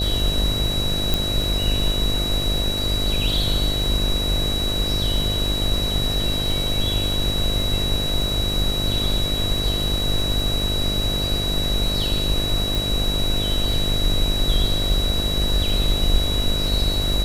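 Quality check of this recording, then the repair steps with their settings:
mains buzz 50 Hz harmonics 14 −27 dBFS
surface crackle 22 per second −26 dBFS
whistle 3,900 Hz −24 dBFS
0:01.14: click
0:12.75: click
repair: click removal
hum removal 50 Hz, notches 14
notch filter 3,900 Hz, Q 30

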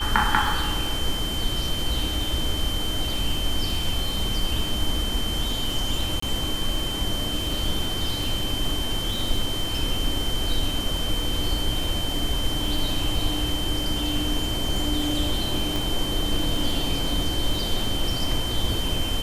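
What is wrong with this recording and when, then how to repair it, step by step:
surface crackle 46 per second −30 dBFS
whistle 3,100 Hz −29 dBFS
0:06.20–0:06.22: drop-out 24 ms
0:15.76: click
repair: click removal
notch filter 3,100 Hz, Q 30
repair the gap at 0:06.20, 24 ms

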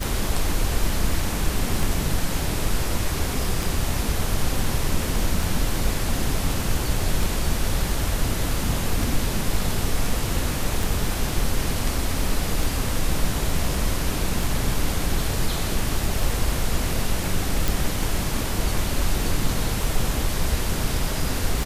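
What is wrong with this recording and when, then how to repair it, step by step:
scratch tick 33 1/3 rpm
0:17.68: click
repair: click removal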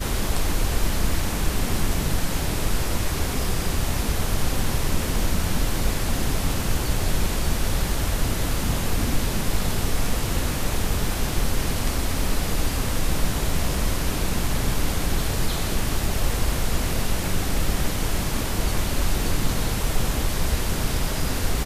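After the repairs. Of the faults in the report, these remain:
none of them is left

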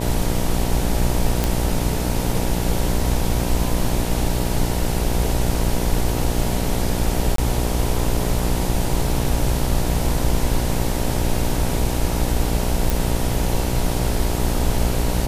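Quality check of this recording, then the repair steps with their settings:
mains buzz 60 Hz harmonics 16 −24 dBFS
0:01.44: click
0:07.36–0:07.38: drop-out 23 ms
0:12.90: click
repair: click removal
hum removal 60 Hz, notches 16
repair the gap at 0:07.36, 23 ms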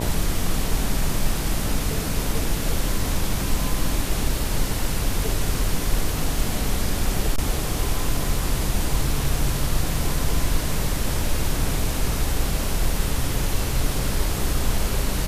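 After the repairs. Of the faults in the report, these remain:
none of them is left

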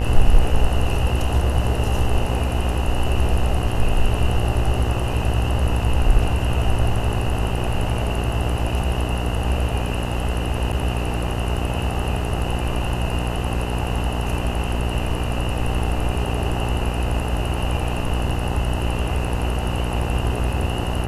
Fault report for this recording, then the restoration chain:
mains buzz 60 Hz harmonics 35 −24 dBFS
0:10.72–0:10.73: drop-out 7.7 ms
0:18.29–0:18.30: drop-out 5.3 ms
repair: hum removal 60 Hz, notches 35
repair the gap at 0:10.72, 7.7 ms
repair the gap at 0:18.29, 5.3 ms

